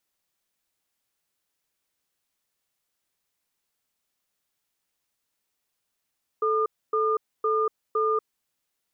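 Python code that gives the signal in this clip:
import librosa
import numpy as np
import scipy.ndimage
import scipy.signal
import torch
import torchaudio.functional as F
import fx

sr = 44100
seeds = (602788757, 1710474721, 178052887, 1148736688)

y = fx.cadence(sr, length_s=1.82, low_hz=437.0, high_hz=1210.0, on_s=0.24, off_s=0.27, level_db=-23.5)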